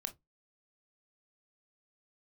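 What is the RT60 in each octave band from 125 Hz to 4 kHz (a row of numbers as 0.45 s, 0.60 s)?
0.20 s, 0.20 s, 0.15 s, 0.15 s, 0.10 s, 0.10 s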